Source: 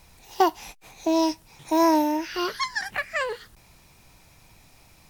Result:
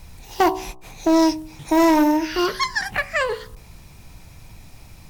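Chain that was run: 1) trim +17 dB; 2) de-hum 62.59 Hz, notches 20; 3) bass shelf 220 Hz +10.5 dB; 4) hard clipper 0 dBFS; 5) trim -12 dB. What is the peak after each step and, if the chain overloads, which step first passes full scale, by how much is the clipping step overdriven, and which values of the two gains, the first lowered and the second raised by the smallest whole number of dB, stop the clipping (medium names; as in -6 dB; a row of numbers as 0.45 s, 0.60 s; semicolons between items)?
+8.5 dBFS, +8.0 dBFS, +9.0 dBFS, 0.0 dBFS, -12.0 dBFS; step 1, 9.0 dB; step 1 +8 dB, step 5 -3 dB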